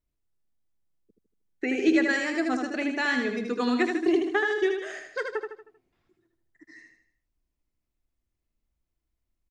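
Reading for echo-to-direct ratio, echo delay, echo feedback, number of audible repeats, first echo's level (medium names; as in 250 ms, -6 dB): -4.0 dB, 78 ms, 44%, 5, -5.0 dB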